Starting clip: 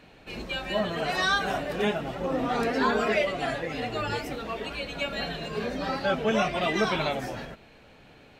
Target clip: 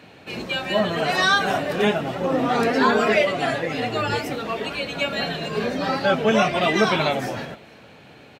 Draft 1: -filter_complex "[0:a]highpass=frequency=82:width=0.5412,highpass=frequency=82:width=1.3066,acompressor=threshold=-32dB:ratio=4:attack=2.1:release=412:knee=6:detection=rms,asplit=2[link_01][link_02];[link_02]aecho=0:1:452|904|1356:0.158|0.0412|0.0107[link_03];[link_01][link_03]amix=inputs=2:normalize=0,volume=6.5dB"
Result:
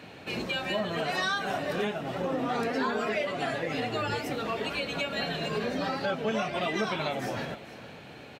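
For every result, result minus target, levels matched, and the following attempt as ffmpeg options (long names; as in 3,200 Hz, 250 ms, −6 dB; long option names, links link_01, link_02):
downward compressor: peak gain reduction +13 dB; echo-to-direct +11.5 dB
-filter_complex "[0:a]highpass=frequency=82:width=0.5412,highpass=frequency=82:width=1.3066,asplit=2[link_01][link_02];[link_02]aecho=0:1:452|904|1356:0.158|0.0412|0.0107[link_03];[link_01][link_03]amix=inputs=2:normalize=0,volume=6.5dB"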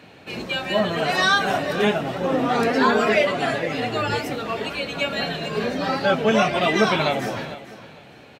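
echo-to-direct +11.5 dB
-filter_complex "[0:a]highpass=frequency=82:width=0.5412,highpass=frequency=82:width=1.3066,asplit=2[link_01][link_02];[link_02]aecho=0:1:452|904:0.0422|0.011[link_03];[link_01][link_03]amix=inputs=2:normalize=0,volume=6.5dB"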